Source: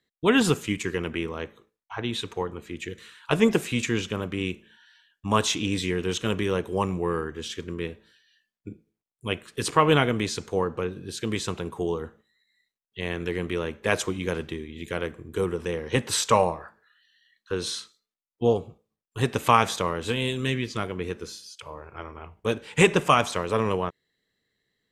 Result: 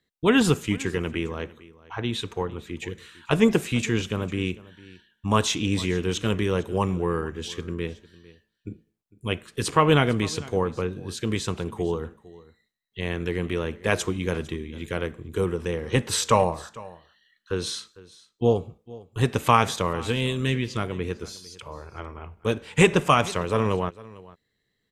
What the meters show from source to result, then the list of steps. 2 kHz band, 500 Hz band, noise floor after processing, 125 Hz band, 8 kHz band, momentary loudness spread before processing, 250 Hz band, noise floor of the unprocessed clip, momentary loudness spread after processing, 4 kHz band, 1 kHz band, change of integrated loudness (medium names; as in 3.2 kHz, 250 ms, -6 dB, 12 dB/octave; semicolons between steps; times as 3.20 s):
0.0 dB, +0.5 dB, -76 dBFS, +4.0 dB, 0.0 dB, 17 LU, +2.0 dB, under -85 dBFS, 18 LU, 0.0 dB, 0.0 dB, +1.0 dB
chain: bass shelf 150 Hz +6.5 dB; delay 452 ms -20.5 dB